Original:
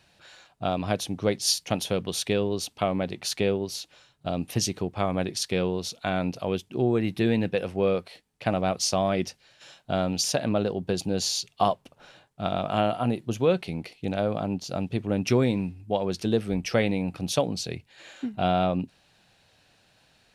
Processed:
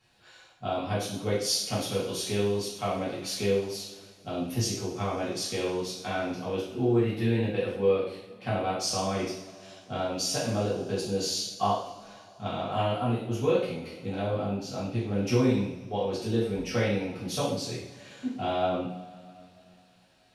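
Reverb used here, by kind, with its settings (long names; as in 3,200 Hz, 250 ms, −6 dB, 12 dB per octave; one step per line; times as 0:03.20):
coupled-rooms reverb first 0.63 s, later 3.2 s, from −21 dB, DRR −9.5 dB
level −12.5 dB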